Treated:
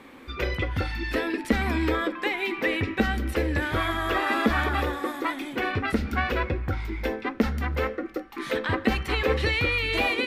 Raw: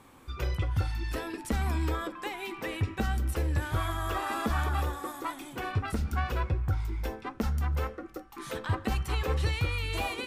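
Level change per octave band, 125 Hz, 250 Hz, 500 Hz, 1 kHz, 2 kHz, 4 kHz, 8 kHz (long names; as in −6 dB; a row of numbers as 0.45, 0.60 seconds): −0.5, +9.0, +9.5, +5.5, +11.0, +8.0, −1.5 decibels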